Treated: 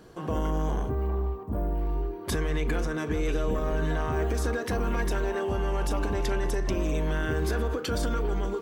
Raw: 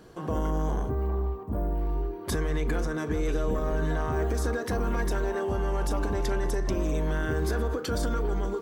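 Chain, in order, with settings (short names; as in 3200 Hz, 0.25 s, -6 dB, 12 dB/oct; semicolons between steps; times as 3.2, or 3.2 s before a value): dynamic EQ 2700 Hz, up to +6 dB, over -56 dBFS, Q 2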